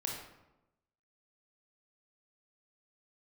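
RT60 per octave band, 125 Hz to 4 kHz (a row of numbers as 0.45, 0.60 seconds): 1.1, 1.1, 1.0, 0.90, 0.75, 0.55 seconds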